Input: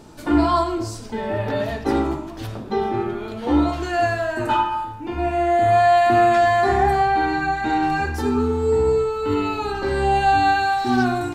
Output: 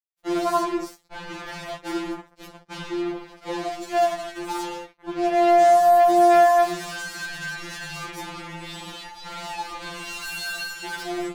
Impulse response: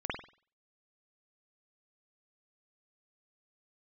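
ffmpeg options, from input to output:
-filter_complex "[0:a]asettb=1/sr,asplit=3[link_01][link_02][link_03];[link_01]atrim=end=3.364[link_04];[link_02]atrim=start=3.36:end=4.56,asetpts=PTS-STARTPTS,afade=type=in:duration=0.004:curve=qsin,afade=type=out:start_time=1.196:duration=0.004:curve=qsin,equalizer=frequency=400:width_type=o:width=0.67:gain=-5,equalizer=frequency=1600:width_type=o:width=0.67:gain=-6,equalizer=frequency=6300:width_type=o:width=0.67:gain=6[link_05];[link_03]atrim=start=4.556[link_06];[link_04][link_05]acrossfade=duration=0.004:curve1=hsin:curve2=qsin[link_07];[link_07][link_06]acrossfade=duration=0.004:curve1=qsin:curve2=hsin,acrusher=bits=3:mix=0:aa=0.5,afftfilt=real='re*2.83*eq(mod(b,8),0)':imag='im*2.83*eq(mod(b,8),0)':win_size=2048:overlap=0.75,volume=-4.5dB"

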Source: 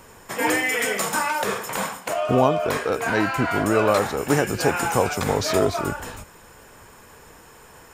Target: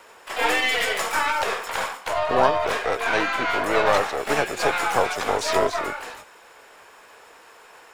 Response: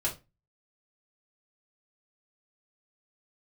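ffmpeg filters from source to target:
-filter_complex "[0:a]acrossover=split=360 6100:gain=0.0794 1 0.251[link_01][link_02][link_03];[link_01][link_02][link_03]amix=inputs=3:normalize=0,aeval=exprs='0.531*(cos(1*acos(clip(val(0)/0.531,-1,1)))-cos(1*PI/2))+0.0188*(cos(4*acos(clip(val(0)/0.531,-1,1)))-cos(4*PI/2))+0.0211*(cos(8*acos(clip(val(0)/0.531,-1,1)))-cos(8*PI/2))':channel_layout=same,asplit=2[link_04][link_05];[link_05]asetrate=66075,aresample=44100,atempo=0.66742,volume=-5dB[link_06];[link_04][link_06]amix=inputs=2:normalize=0"

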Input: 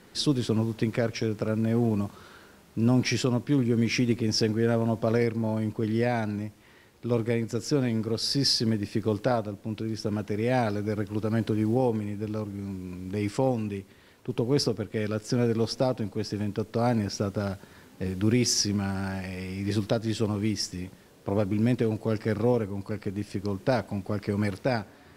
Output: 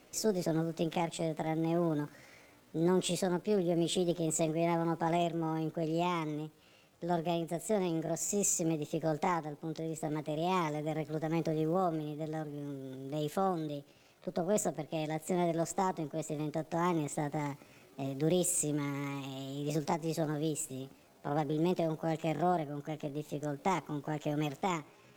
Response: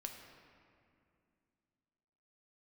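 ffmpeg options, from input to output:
-af "asetrate=64194,aresample=44100,atempo=0.686977,volume=-6.5dB"

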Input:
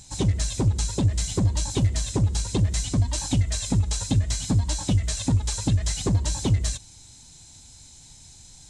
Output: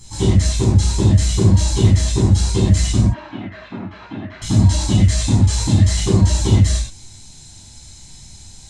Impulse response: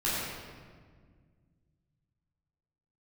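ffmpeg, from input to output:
-filter_complex "[0:a]asettb=1/sr,asplit=3[link_01][link_02][link_03];[link_01]atrim=end=3.014[link_04];[link_02]atrim=start=3.01:end=4.42,asetpts=PTS-STARTPTS,afade=type=in:duration=0.004:curve=qsin,afade=type=out:start_time=1.406:duration=0.004:curve=qsin,highpass=390,equalizer=frequency=500:width_type=q:width=4:gain=-9,equalizer=frequency=840:width_type=q:width=4:gain=-6,equalizer=frequency=1400:width_type=q:width=4:gain=3,equalizer=frequency=2000:width_type=q:width=4:gain=-4,lowpass=frequency=2200:width=0.5412,lowpass=frequency=2200:width=1.3066[link_05];[link_03]atrim=start=4.416[link_06];[link_04][link_05]acrossfade=duration=0.004:curve1=hsin:curve2=qsin[link_07];[link_07][link_06]acrossfade=duration=0.004:curve1=qsin:curve2=hsin[link_08];[1:a]atrim=start_sample=2205,atrim=end_sample=6615,asetrate=48510,aresample=44100[link_09];[link_08][link_09]afir=irnorm=-1:irlink=0"

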